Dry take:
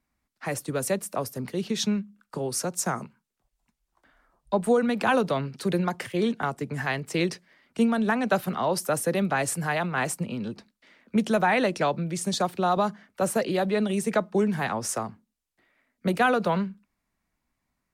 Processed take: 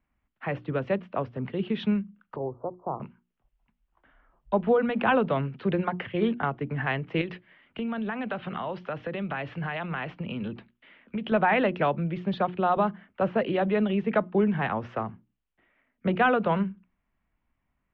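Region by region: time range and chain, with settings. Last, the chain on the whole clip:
2.36–3 steep low-pass 1100 Hz 72 dB/oct + bell 190 Hz -14.5 dB 0.67 oct
7.21–11.32 LPF 4700 Hz + high shelf 2700 Hz +10 dB + compressor 4:1, threshold -29 dBFS
whole clip: elliptic low-pass 3100 Hz, stop band 70 dB; low shelf 120 Hz +7.5 dB; notches 60/120/180/240/300/360 Hz

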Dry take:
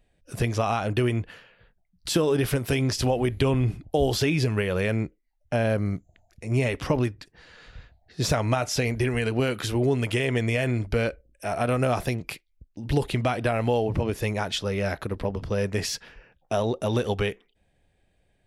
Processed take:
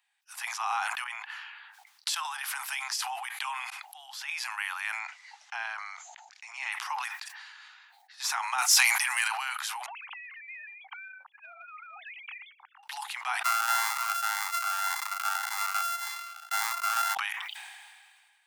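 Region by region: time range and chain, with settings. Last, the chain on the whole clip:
1.04–2.25 negative-ratio compressor -31 dBFS + high shelf 7000 Hz -11 dB + three-band expander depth 40%
3.7–4.29 high shelf 4700 Hz -5 dB + auto swell 0.516 s
4.99–6.72 LPF 6600 Hz 24 dB/oct + notches 60/120/180/240/300/360/420/480/540 Hz
8.58–9.28 HPF 87 Hz + high shelf 4300 Hz +11.5 dB + sample leveller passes 1
9.86–12.83 sine-wave speech + compressor 10:1, threshold -35 dBFS
13.44–17.15 sample sorter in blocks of 64 samples + bell 1400 Hz +8 dB 0.6 oct + cascading phaser rising 1.8 Hz
whole clip: steep high-pass 800 Hz 96 dB/oct; dynamic EQ 3400 Hz, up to -5 dB, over -45 dBFS, Q 1; sustainer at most 31 dB/s

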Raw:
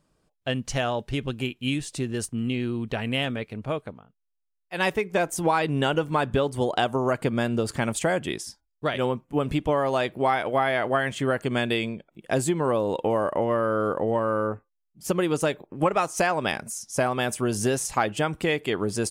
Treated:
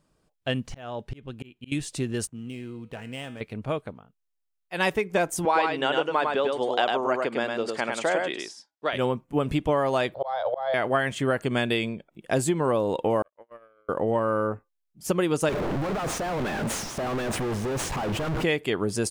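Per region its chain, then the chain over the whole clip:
0.67–1.72 de-esser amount 80% + high shelf 3900 Hz -6 dB + auto swell 0.4 s
2.27–3.41 median filter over 9 samples + HPF 40 Hz + resonator 160 Hz, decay 0.65 s, mix 70%
5.45–8.93 BPF 390–5400 Hz + echo 0.103 s -3.5 dB
10.14–10.74 EQ curve 100 Hz 0 dB, 150 Hz -15 dB, 250 Hz -25 dB, 360 Hz -19 dB, 540 Hz +14 dB, 1600 Hz 0 dB, 2600 Hz -12 dB, 3800 Hz +12 dB, 11000 Hz -25 dB + auto swell 0.51 s
13.22–13.89 HPF 340 Hz 6 dB/oct + gate -22 dBFS, range -59 dB
15.49–18.44 infinite clipping + LPF 1100 Hz 6 dB/oct + sustainer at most 40 dB/s
whole clip: dry

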